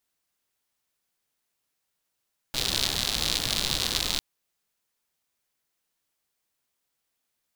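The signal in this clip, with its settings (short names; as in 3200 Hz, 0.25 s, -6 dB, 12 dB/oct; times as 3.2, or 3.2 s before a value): rain from filtered ticks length 1.65 s, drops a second 110, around 3900 Hz, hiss -5 dB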